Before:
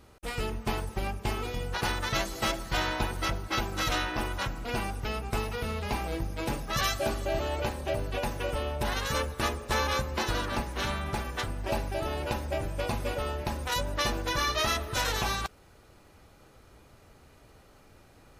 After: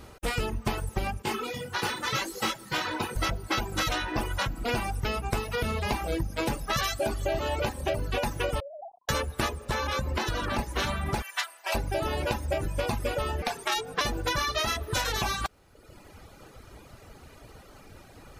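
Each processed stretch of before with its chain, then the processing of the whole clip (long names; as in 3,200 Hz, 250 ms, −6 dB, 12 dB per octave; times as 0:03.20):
0:01.22–0:03.16: high-pass filter 150 Hz + notch filter 670 Hz, Q 5.7 + micro pitch shift up and down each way 30 cents
0:08.60–0:09.09: three sine waves on the formant tracks + Gaussian smoothing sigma 20 samples
0:09.65–0:10.59: bass and treble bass +1 dB, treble −3 dB + downward compressor 3 to 1, threshold −31 dBFS
0:11.22–0:11.75: Bessel high-pass filter 1,100 Hz, order 4 + comb filter 3 ms, depth 36%
0:13.42–0:14.01: meter weighting curve A + frequency shifter −130 Hz
whole clip: reverb reduction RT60 0.91 s; downward compressor, threshold −34 dBFS; level +9 dB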